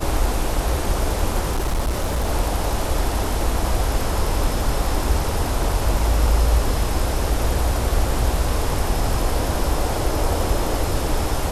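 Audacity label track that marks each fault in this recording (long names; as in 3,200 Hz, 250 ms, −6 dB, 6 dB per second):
1.500000	2.300000	clipping −17 dBFS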